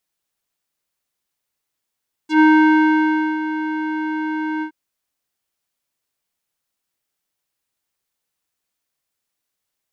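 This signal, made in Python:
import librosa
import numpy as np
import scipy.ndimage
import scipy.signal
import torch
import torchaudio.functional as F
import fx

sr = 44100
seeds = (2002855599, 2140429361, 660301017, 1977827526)

y = fx.sub_voice(sr, note=63, wave='square', cutoff_hz=1600.0, q=1.8, env_oct=2.5, env_s=0.06, attack_ms=105.0, decay_s=0.99, sustain_db=-12.5, release_s=0.09, note_s=2.33, slope=12)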